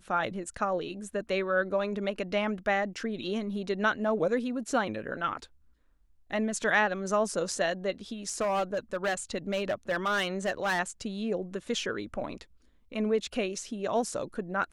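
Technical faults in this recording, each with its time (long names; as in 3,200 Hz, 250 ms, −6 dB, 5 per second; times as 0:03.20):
0:08.29–0:10.80: clipping −24 dBFS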